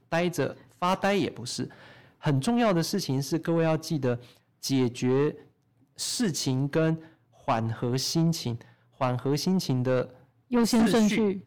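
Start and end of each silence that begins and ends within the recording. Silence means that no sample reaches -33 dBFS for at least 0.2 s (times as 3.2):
0.52–0.82
1.66–2.24
4.16–4.64
5.31–5.99
6.95–7.48
8.61–9.01
10.05–10.52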